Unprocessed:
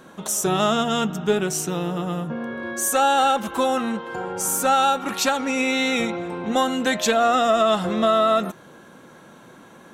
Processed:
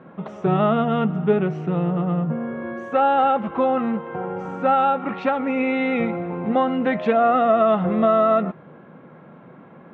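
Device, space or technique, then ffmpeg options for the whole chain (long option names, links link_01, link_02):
bass cabinet: -af "highpass=87,equalizer=frequency=160:width_type=q:width=4:gain=6,equalizer=frequency=330:width_type=q:width=4:gain=-3,equalizer=frequency=960:width_type=q:width=4:gain=-4,equalizer=frequency=1600:width_type=q:width=4:gain=-8,lowpass=frequency=2100:width=0.5412,lowpass=frequency=2100:width=1.3066,volume=2.5dB"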